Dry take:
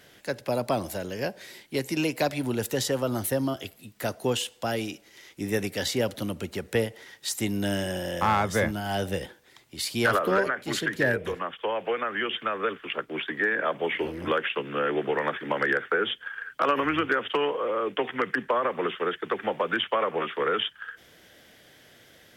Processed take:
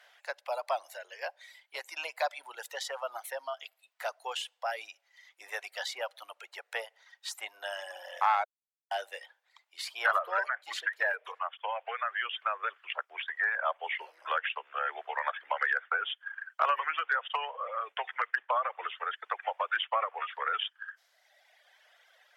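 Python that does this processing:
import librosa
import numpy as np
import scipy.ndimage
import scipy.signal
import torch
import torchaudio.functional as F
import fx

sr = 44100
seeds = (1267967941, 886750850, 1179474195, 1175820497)

y = fx.edit(x, sr, fx.silence(start_s=8.44, length_s=0.47), tone=tone)
y = fx.lowpass(y, sr, hz=2100.0, slope=6)
y = fx.dereverb_blind(y, sr, rt60_s=1.5)
y = scipy.signal.sosfilt(scipy.signal.butter(6, 660.0, 'highpass', fs=sr, output='sos'), y)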